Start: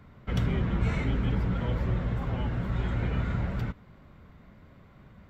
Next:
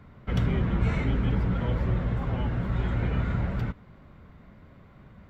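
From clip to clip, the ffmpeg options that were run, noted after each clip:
ffmpeg -i in.wav -af "highshelf=frequency=4300:gain=-5.5,volume=2dB" out.wav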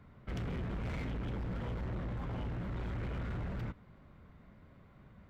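ffmpeg -i in.wav -af "asoftclip=type=hard:threshold=-28.5dB,volume=-7dB" out.wav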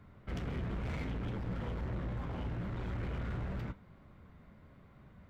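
ffmpeg -i in.wav -af "flanger=delay=9.1:depth=6.6:regen=-60:speed=0.73:shape=triangular,volume=4.5dB" out.wav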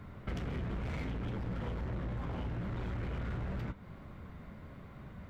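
ffmpeg -i in.wav -af "acompressor=threshold=-44dB:ratio=6,volume=8.5dB" out.wav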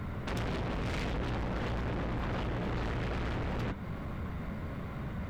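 ffmpeg -i in.wav -af "aeval=exprs='0.0376*sin(PI/2*3.16*val(0)/0.0376)':channel_layout=same,volume=-2.5dB" out.wav

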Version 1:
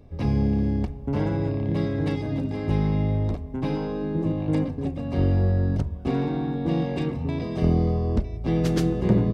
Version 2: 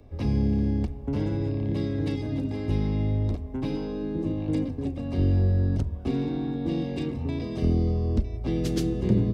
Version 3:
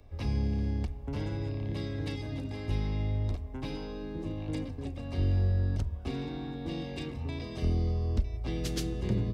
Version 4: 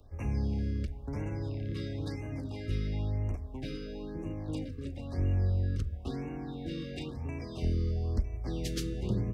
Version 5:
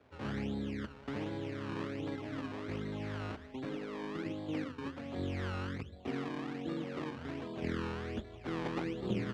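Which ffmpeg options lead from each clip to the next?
ffmpeg -i in.wav -filter_complex "[0:a]equalizer=frequency=160:width_type=o:width=0.37:gain=-8,acrossover=split=220|410|2500[link_01][link_02][link_03][link_04];[link_03]acompressor=threshold=-43dB:ratio=6[link_05];[link_01][link_02][link_05][link_04]amix=inputs=4:normalize=0" out.wav
ffmpeg -i in.wav -af "equalizer=frequency=250:width=0.46:gain=-10" out.wav
ffmpeg -i in.wav -af "afftfilt=real='re*(1-between(b*sr/1024,780*pow(4100/780,0.5+0.5*sin(2*PI*0.99*pts/sr))/1.41,780*pow(4100/780,0.5+0.5*sin(2*PI*0.99*pts/sr))*1.41))':imag='im*(1-between(b*sr/1024,780*pow(4100/780,0.5+0.5*sin(2*PI*0.99*pts/sr))/1.41,780*pow(4100/780,0.5+0.5*sin(2*PI*0.99*pts/sr))*1.41))':win_size=1024:overlap=0.75,volume=-1.5dB" out.wav
ffmpeg -i in.wav -af "acrusher=samples=22:mix=1:aa=0.000001:lfo=1:lforange=22:lforate=1.3,highpass=200,lowpass=3200,volume=1.5dB" out.wav

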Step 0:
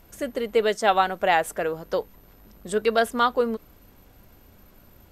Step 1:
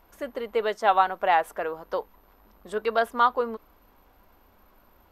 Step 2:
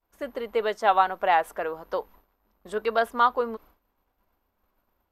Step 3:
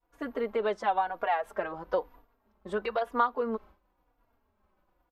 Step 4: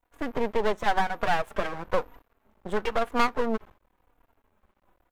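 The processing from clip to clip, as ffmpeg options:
ffmpeg -i in.wav -af "equalizer=frequency=125:width_type=o:width=1:gain=-12,equalizer=frequency=1000:width_type=o:width=1:gain=9,equalizer=frequency=8000:width_type=o:width=1:gain=-9,volume=-5.5dB" out.wav
ffmpeg -i in.wav -af "agate=range=-33dB:threshold=-47dB:ratio=3:detection=peak" out.wav
ffmpeg -i in.wav -filter_complex "[0:a]lowpass=frequency=2300:poles=1,acompressor=threshold=-25dB:ratio=12,asplit=2[link_01][link_02];[link_02]adelay=3.6,afreqshift=-1[link_03];[link_01][link_03]amix=inputs=2:normalize=1,volume=4.5dB" out.wav
ffmpeg -i in.wav -af "asoftclip=type=tanh:threshold=-18.5dB,asuperstop=centerf=4800:order=4:qfactor=2,aeval=exprs='max(val(0),0)':channel_layout=same,volume=8.5dB" out.wav

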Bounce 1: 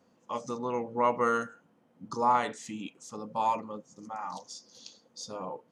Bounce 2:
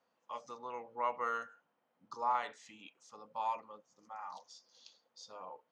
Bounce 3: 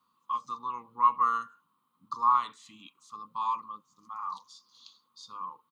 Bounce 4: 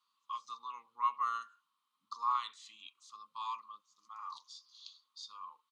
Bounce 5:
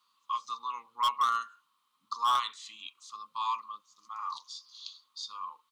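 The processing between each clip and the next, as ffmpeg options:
ffmpeg -i in.wav -filter_complex "[0:a]acrossover=split=550 5600:gain=0.158 1 0.158[link_01][link_02][link_03];[link_01][link_02][link_03]amix=inputs=3:normalize=0,volume=-7dB" out.wav
ffmpeg -i in.wav -af "firequalizer=gain_entry='entry(160,0);entry(280,-4);entry(640,-28);entry(1100,10);entry(1600,-15);entry(3800,2);entry(5500,-8);entry(9300,3)':delay=0.05:min_phase=1,volume=7.5dB" out.wav
ffmpeg -i in.wav -af "bandpass=frequency=4100:width_type=q:width=0.91:csg=0,volume=1.5dB" out.wav
ffmpeg -i in.wav -af "aeval=exprs='0.0398*(abs(mod(val(0)/0.0398+3,4)-2)-1)':channel_layout=same,volume=8dB" out.wav

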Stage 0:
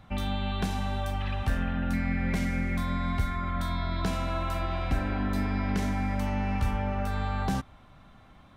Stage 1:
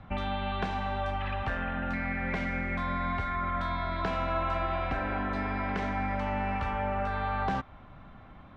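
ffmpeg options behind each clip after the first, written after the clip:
ffmpeg -i in.wav -filter_complex "[0:a]lowpass=2400,acrossover=split=420|1400[link_01][link_02][link_03];[link_01]acompressor=threshold=-37dB:ratio=6[link_04];[link_04][link_02][link_03]amix=inputs=3:normalize=0,volume=4dB" out.wav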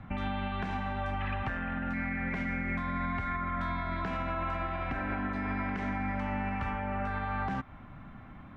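ffmpeg -i in.wav -af "equalizer=frequency=125:width_type=o:width=1:gain=3,equalizer=frequency=250:width_type=o:width=1:gain=5,equalizer=frequency=500:width_type=o:width=1:gain=-4,equalizer=frequency=2000:width_type=o:width=1:gain=4,equalizer=frequency=4000:width_type=o:width=1:gain=-5,alimiter=level_in=0.5dB:limit=-24dB:level=0:latency=1:release=119,volume=-0.5dB" out.wav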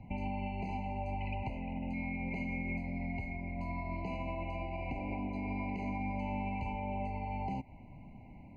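ffmpeg -i in.wav -af "afftfilt=real='re*eq(mod(floor(b*sr/1024/1000),2),0)':imag='im*eq(mod(floor(b*sr/1024/1000),2),0)':win_size=1024:overlap=0.75,volume=-3dB" out.wav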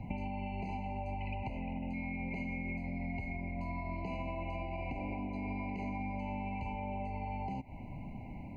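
ffmpeg -i in.wav -af "acompressor=threshold=-42dB:ratio=10,volume=7dB" out.wav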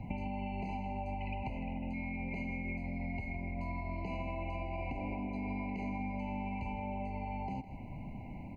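ffmpeg -i in.wav -af "aecho=1:1:158:0.2" out.wav

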